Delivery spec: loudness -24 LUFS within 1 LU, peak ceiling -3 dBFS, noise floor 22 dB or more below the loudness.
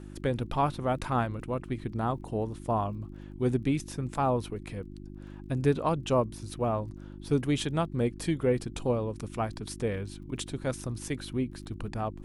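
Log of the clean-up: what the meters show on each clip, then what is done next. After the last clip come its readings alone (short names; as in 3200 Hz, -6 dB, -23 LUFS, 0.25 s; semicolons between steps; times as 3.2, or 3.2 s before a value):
ticks 20/s; hum 50 Hz; harmonics up to 350 Hz; hum level -41 dBFS; loudness -31.5 LUFS; peak -13.5 dBFS; loudness target -24.0 LUFS
-> de-click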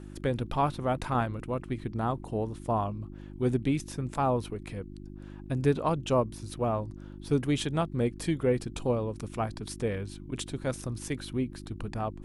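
ticks 0/s; hum 50 Hz; harmonics up to 350 Hz; hum level -41 dBFS
-> de-hum 50 Hz, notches 7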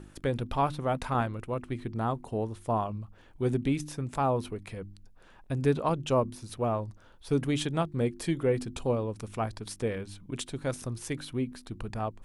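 hum none; loudness -31.5 LUFS; peak -14.0 dBFS; loudness target -24.0 LUFS
-> gain +7.5 dB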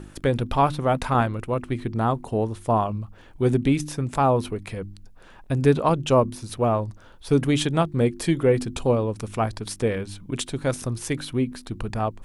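loudness -24.0 LUFS; peak -6.5 dBFS; noise floor -47 dBFS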